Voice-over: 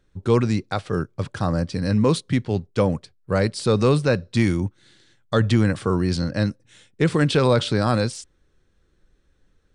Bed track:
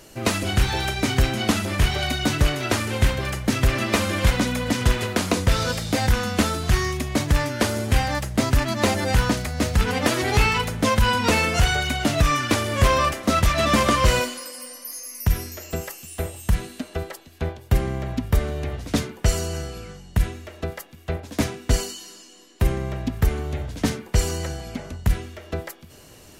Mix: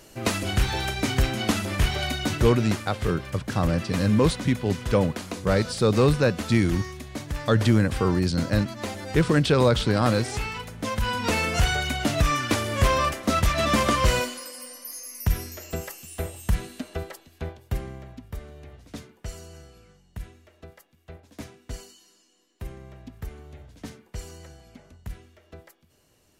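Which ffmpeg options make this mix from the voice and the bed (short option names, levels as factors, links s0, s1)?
-filter_complex "[0:a]adelay=2150,volume=0.841[s0];[1:a]volume=2,afade=t=out:st=2.05:d=0.8:silence=0.354813,afade=t=in:st=10.7:d=0.9:silence=0.354813,afade=t=out:st=16.9:d=1.28:silence=0.211349[s1];[s0][s1]amix=inputs=2:normalize=0"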